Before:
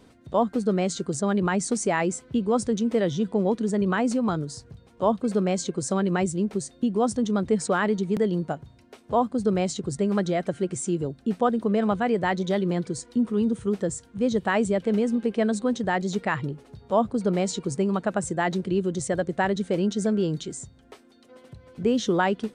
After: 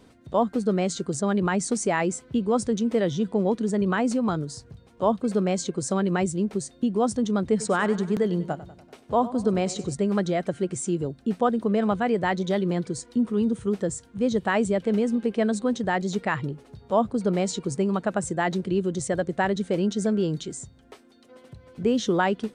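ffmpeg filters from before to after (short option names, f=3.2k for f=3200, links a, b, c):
-filter_complex "[0:a]asettb=1/sr,asplit=3[a][b][c];[a]atrim=end=7.434[d];[b]atrim=start=7.43:end=9.94,asetpts=PTS-STARTPTS,afade=t=in:d=0.004:c=qsin,afade=t=out:st=2.506:d=0.004:c=qsin,aecho=1:1:96|192|288|384|480:0.158|0.0903|0.0515|0.0294|0.0167,atrim=end_sample=110691[e];[c]atrim=start=9.936[f];[d][e]acrossfade=d=0.004:c1=hsin:c2=qsin[g];[g][f]acrossfade=d=0.004:c1=qsin:c2=hsin"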